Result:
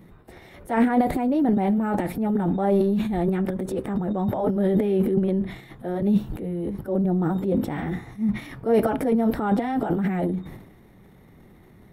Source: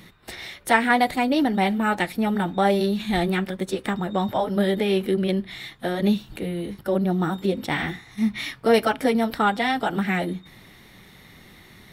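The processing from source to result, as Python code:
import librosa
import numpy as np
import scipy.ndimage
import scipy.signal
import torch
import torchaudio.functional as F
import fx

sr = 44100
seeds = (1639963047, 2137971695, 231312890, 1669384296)

y = fx.transient(x, sr, attack_db=-5, sustain_db=12)
y = fx.curve_eq(y, sr, hz=(430.0, 830.0, 4200.0, 12000.0), db=(0, -4, -21, -11))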